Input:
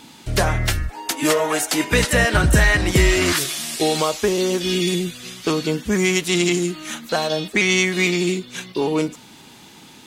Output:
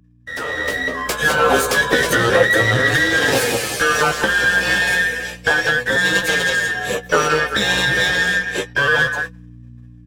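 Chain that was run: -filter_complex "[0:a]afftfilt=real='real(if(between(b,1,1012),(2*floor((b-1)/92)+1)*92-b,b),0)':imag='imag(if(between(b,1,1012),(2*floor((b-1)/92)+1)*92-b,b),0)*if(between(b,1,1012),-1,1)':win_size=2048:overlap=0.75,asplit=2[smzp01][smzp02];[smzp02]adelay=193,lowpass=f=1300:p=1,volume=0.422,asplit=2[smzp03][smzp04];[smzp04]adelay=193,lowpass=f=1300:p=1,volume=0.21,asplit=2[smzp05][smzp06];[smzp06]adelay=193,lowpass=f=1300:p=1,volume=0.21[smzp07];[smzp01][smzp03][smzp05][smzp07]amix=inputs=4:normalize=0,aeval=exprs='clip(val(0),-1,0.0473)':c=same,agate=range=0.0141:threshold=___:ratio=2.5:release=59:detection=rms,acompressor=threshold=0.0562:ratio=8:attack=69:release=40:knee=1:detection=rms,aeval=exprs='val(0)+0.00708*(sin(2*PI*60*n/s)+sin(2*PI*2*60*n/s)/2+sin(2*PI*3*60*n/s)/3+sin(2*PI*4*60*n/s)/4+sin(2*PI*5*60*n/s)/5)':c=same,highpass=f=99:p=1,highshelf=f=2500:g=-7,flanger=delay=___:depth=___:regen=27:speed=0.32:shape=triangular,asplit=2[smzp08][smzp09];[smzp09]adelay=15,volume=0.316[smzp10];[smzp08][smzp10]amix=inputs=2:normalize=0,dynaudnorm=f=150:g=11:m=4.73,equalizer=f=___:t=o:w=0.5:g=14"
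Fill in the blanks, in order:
0.0282, 5.8, 9.6, 490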